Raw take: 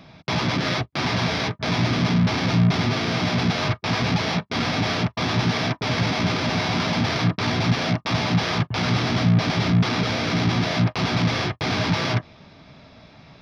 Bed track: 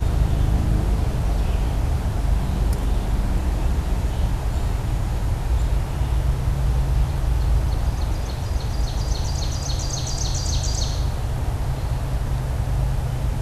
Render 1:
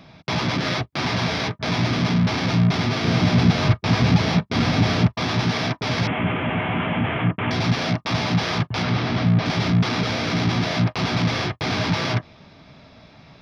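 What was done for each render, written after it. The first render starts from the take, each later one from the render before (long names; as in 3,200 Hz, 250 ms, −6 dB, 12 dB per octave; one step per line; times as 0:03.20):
0:03.04–0:05.13: low-shelf EQ 280 Hz +8.5 dB
0:06.07–0:07.51: Butterworth low-pass 3,200 Hz 96 dB per octave
0:08.83–0:09.46: high-frequency loss of the air 120 metres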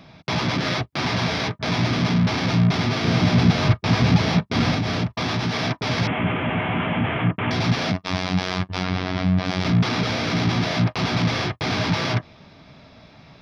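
0:04.74–0:05.63: downward compressor 5 to 1, threshold −19 dBFS
0:07.92–0:09.65: phases set to zero 92 Hz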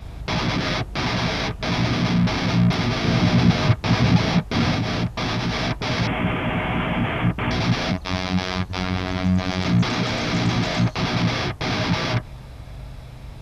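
mix in bed track −15 dB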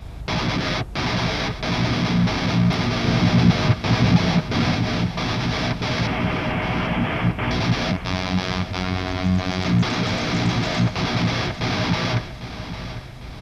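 repeating echo 801 ms, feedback 46%, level −12 dB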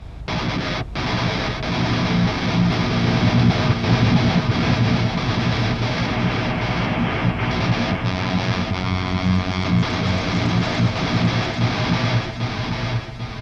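high-frequency loss of the air 51 metres
repeating echo 792 ms, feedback 41%, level −4 dB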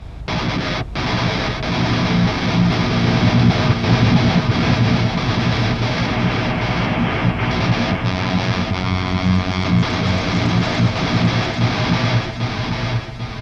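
level +2.5 dB
brickwall limiter −3 dBFS, peak gain reduction 1 dB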